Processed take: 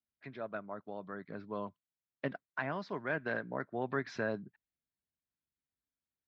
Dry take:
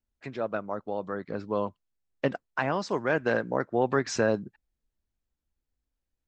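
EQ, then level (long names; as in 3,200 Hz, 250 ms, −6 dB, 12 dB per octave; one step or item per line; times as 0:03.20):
loudspeaker in its box 140–3,800 Hz, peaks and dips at 230 Hz −4 dB, 340 Hz −6 dB, 500 Hz −9 dB, 830 Hz −7 dB, 1,200 Hz −4 dB, 2,800 Hz −7 dB
−5.0 dB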